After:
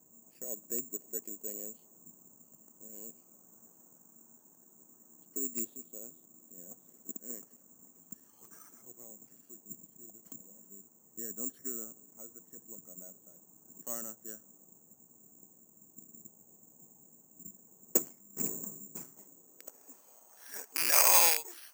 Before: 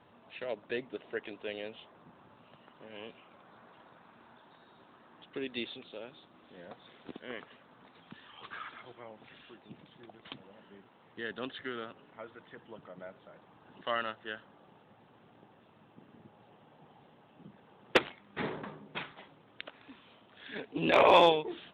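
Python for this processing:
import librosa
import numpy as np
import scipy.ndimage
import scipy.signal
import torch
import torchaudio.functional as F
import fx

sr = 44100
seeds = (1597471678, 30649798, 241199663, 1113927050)

y = fx.rattle_buzz(x, sr, strikes_db=-38.0, level_db=-17.0)
y = fx.filter_sweep_bandpass(y, sr, from_hz=240.0, to_hz=1700.0, start_s=19.1, end_s=21.06, q=1.4)
y = (np.kron(scipy.signal.resample_poly(y, 1, 6), np.eye(6)[0]) * 6)[:len(y)]
y = y * 10.0 ** (-2.0 / 20.0)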